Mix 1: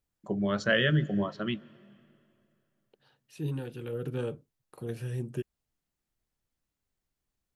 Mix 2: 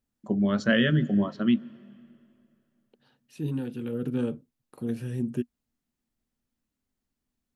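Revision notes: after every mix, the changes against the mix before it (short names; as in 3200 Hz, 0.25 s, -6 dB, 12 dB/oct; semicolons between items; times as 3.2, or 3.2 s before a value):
master: add bell 240 Hz +14 dB 0.43 oct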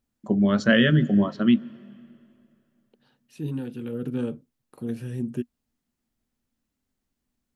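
first voice +4.0 dB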